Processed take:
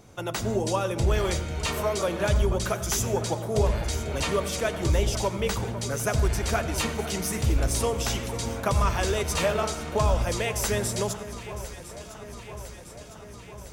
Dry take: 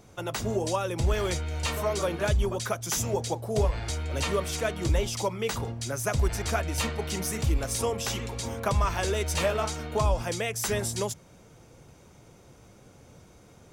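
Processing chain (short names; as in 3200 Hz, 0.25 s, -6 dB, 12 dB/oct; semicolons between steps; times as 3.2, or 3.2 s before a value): echo with dull and thin repeats by turns 0.503 s, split 1600 Hz, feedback 81%, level -12.5 dB; on a send at -14 dB: reverb RT60 0.60 s, pre-delay 77 ms; on the sum: gain +1.5 dB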